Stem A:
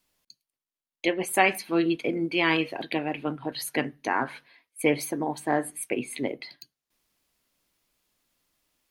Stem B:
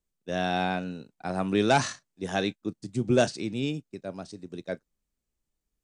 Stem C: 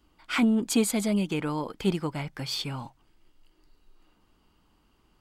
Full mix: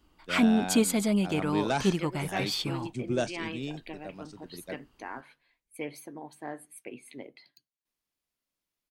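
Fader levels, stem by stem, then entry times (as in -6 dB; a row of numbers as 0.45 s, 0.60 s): -14.0 dB, -7.0 dB, 0.0 dB; 0.95 s, 0.00 s, 0.00 s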